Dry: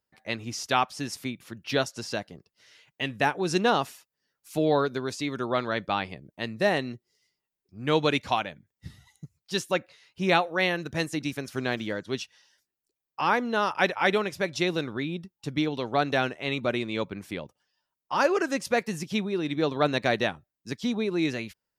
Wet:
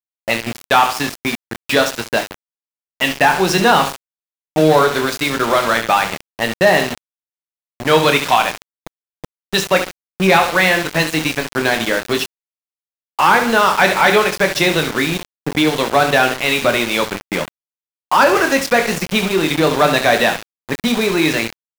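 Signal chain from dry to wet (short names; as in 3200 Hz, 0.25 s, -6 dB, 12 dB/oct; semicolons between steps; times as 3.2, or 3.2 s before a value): high shelf 4300 Hz +5 dB; feedback echo 70 ms, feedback 37%, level -12 dB; overdrive pedal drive 17 dB, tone 2600 Hz, clips at -7.5 dBFS; bell 160 Hz +7.5 dB 0.63 oct; low-pass opened by the level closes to 410 Hz, open at -18.5 dBFS; notches 50/100/150/200/250/300/350/400/450/500 Hz; in parallel at +3 dB: compressor 12:1, threshold -29 dBFS, peak gain reduction 16 dB; on the sum: HPF 120 Hz 12 dB/oct; doubler 26 ms -7.5 dB; sample gate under -23 dBFS; gain +3.5 dB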